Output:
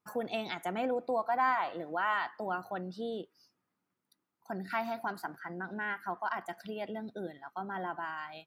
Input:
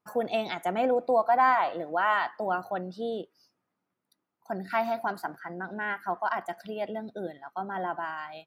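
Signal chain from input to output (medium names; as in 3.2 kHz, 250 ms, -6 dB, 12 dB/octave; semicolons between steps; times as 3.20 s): peaking EQ 620 Hz -5 dB 0.88 oct; in parallel at -2 dB: compression, threshold -36 dBFS, peak gain reduction 15.5 dB; on the sum: trim -6 dB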